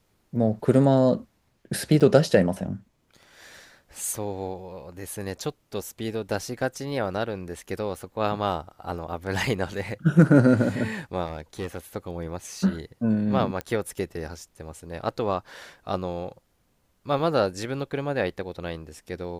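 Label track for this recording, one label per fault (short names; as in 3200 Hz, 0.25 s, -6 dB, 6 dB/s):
2.000000	2.010000	gap 6.8 ms
11.250000	11.790000	clipped -26 dBFS
13.610000	13.610000	pop -16 dBFS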